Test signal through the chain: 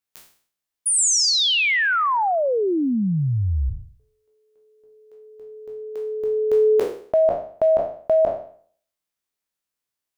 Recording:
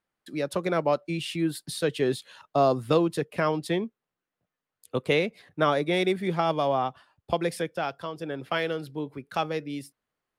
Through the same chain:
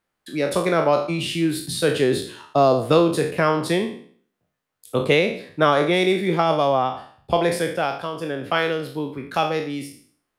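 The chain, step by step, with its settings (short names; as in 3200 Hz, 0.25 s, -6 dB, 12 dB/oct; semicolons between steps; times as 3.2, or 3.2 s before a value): spectral trails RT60 0.52 s; gain +5 dB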